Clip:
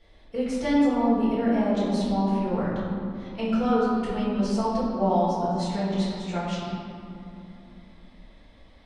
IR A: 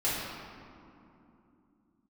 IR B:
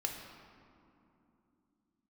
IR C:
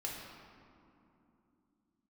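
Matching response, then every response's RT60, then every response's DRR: A; 2.9 s, 2.9 s, 2.9 s; -10.5 dB, 1.0 dB, -3.5 dB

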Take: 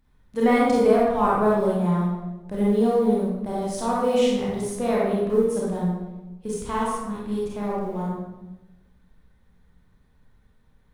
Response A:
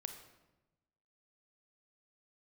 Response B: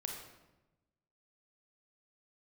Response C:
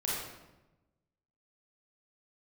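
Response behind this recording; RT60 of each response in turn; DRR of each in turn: C; 1.0 s, 1.0 s, 1.0 s; 6.0 dB, 1.0 dB, -6.5 dB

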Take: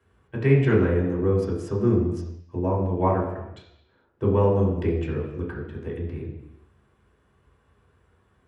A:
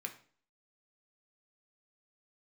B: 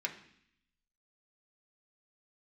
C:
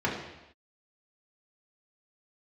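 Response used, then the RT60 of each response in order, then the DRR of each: C; 0.45 s, 0.65 s, no single decay rate; 3.5 dB, 0.0 dB, -5.0 dB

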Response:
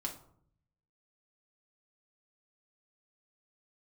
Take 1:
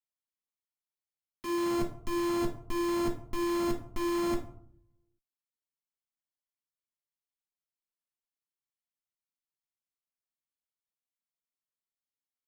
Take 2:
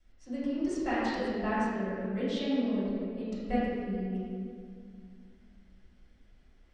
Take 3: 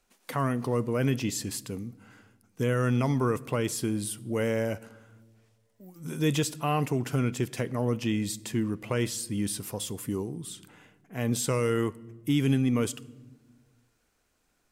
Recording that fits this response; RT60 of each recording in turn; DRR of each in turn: 1; 0.65 s, 2.2 s, 1.6 s; 0.0 dB, -12.5 dB, 19.5 dB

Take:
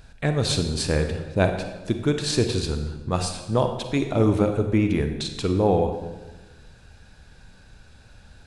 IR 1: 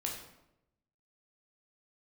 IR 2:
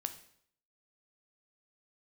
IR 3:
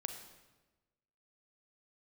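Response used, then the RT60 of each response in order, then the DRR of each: 3; 0.85 s, 0.65 s, 1.2 s; -1.0 dB, 8.0 dB, 6.0 dB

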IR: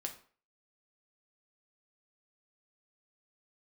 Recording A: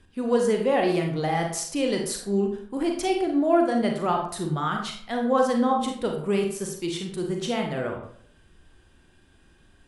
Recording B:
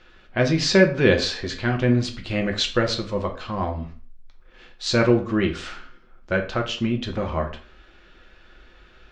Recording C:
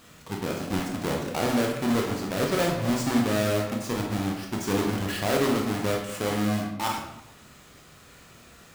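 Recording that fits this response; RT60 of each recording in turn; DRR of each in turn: B; 0.60 s, 0.45 s, 0.85 s; 2.0 dB, 3.0 dB, -0.5 dB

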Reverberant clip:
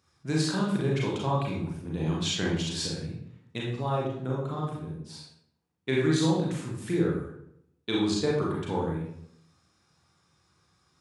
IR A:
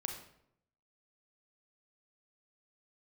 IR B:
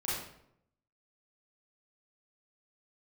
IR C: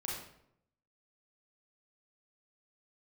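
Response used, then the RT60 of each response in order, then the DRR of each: C; 0.75 s, 0.75 s, 0.75 s; 3.0 dB, -9.0 dB, -4.5 dB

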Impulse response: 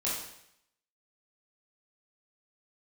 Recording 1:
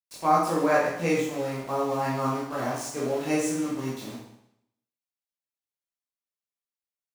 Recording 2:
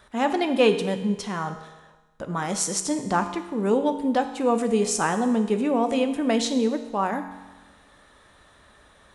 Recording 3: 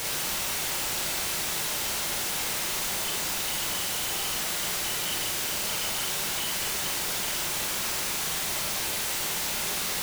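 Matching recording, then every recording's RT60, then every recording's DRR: 1; 0.75 s, 1.2 s, 0.40 s; -7.5 dB, 6.5 dB, -1.0 dB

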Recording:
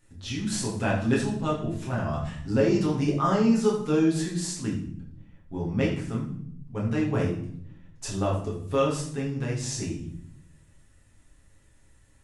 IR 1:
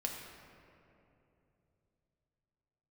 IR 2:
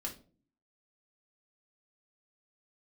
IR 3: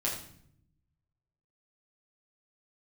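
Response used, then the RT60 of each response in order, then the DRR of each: 3; 3.0 s, 0.40 s, 0.65 s; 0.0 dB, -1.5 dB, -5.5 dB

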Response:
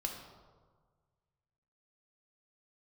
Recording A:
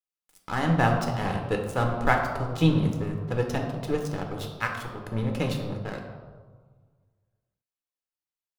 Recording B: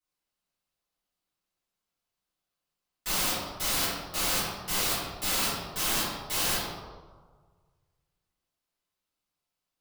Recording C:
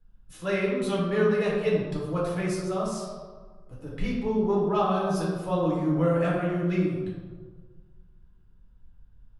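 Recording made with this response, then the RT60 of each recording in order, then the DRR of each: A; 1.5 s, 1.5 s, 1.5 s; 1.5 dB, -12.0 dB, -5.5 dB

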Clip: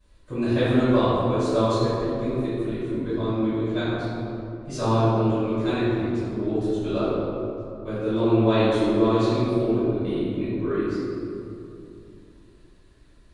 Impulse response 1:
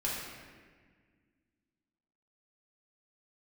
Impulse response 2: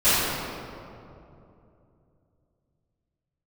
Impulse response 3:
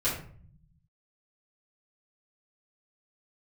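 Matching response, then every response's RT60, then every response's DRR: 2; 1.6 s, 2.8 s, 0.50 s; -6.5 dB, -20.0 dB, -10.5 dB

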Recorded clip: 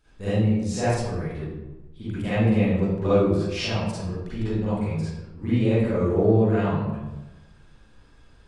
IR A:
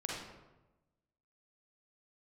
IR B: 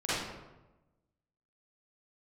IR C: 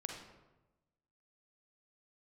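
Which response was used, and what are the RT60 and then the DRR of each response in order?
B; 1.1 s, 1.1 s, 1.1 s; -3.5 dB, -13.0 dB, 1.5 dB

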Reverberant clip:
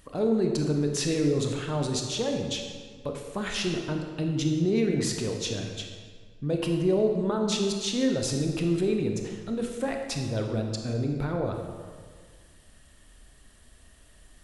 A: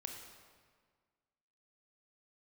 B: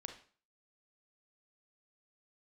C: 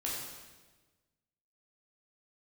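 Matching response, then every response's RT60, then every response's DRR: A; 1.7 s, 0.45 s, 1.3 s; 2.5 dB, 5.0 dB, -5.5 dB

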